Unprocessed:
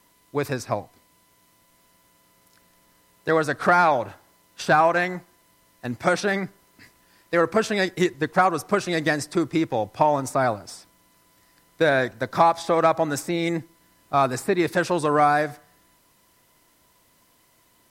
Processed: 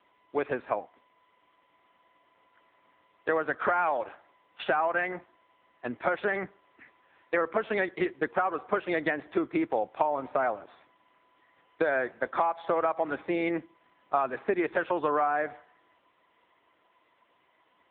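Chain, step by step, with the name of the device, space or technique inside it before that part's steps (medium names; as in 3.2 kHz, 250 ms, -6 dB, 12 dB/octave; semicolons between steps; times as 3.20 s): 3.81–4.70 s: dynamic bell 3 kHz, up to +5 dB, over -40 dBFS, Q 1.5; voicemail (band-pass 350–3300 Hz; compression 6:1, threshold -24 dBFS, peak gain reduction 11 dB; trim +1.5 dB; AMR-NB 6.7 kbps 8 kHz)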